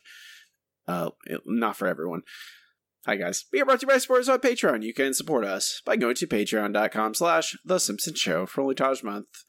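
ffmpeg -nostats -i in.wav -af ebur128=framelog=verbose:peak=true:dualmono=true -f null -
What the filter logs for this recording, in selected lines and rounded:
Integrated loudness:
  I:         -22.2 LUFS
  Threshold: -32.8 LUFS
Loudness range:
  LRA:         6.3 LU
  Threshold: -42.2 LUFS
  LRA low:   -27.0 LUFS
  LRA high:  -20.7 LUFS
True peak:
  Peak:       -9.2 dBFS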